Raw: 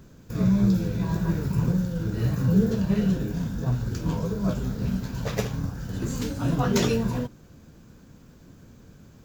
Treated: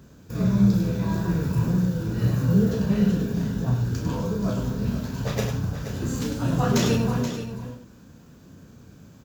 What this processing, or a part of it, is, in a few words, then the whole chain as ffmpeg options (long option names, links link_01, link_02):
slapback doubling: -filter_complex "[0:a]asplit=3[link_01][link_02][link_03];[link_02]adelay=34,volume=-6dB[link_04];[link_03]adelay=100,volume=-7dB[link_05];[link_01][link_04][link_05]amix=inputs=3:normalize=0,highpass=54,equalizer=frequency=2100:width=7.6:gain=-3,aecho=1:1:478:0.299"